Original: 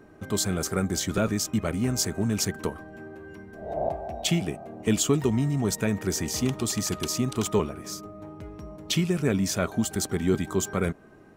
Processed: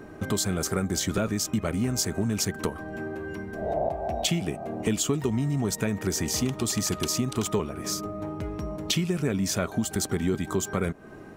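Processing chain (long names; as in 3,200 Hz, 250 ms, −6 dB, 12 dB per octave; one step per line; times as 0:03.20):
downward compressor 3 to 1, threshold −34 dBFS, peak gain reduction 12.5 dB
level +8 dB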